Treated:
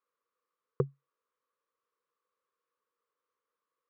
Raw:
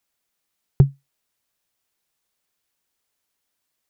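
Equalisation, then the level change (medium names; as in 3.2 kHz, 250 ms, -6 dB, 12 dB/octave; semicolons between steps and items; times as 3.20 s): two resonant band-passes 740 Hz, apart 1.2 oct; +6.5 dB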